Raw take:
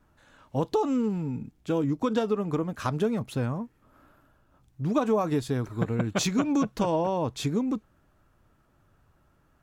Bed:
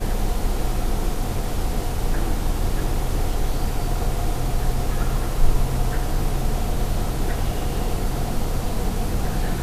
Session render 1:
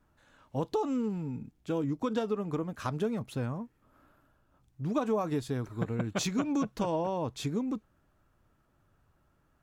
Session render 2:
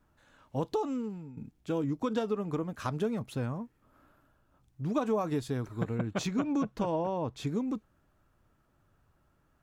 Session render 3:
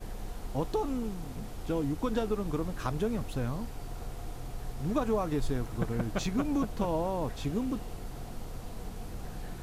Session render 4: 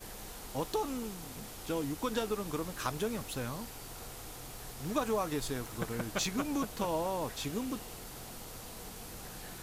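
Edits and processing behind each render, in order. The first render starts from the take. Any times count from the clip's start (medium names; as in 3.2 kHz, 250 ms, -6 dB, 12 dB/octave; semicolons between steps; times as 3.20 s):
trim -5 dB
0.71–1.37 s: fade out, to -13 dB; 5.98–7.47 s: treble shelf 3.6 kHz -8 dB
add bed -17 dB
tilt EQ +2.5 dB/octave; band-stop 710 Hz, Q 19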